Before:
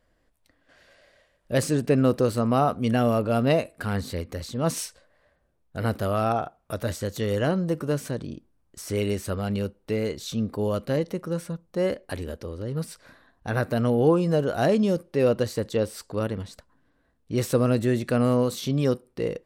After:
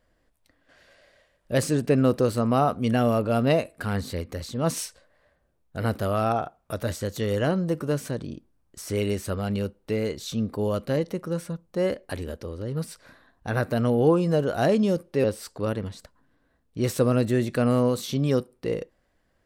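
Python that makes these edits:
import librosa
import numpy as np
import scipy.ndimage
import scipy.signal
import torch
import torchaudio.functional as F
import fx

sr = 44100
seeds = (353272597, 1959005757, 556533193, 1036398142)

y = fx.edit(x, sr, fx.cut(start_s=15.24, length_s=0.54), tone=tone)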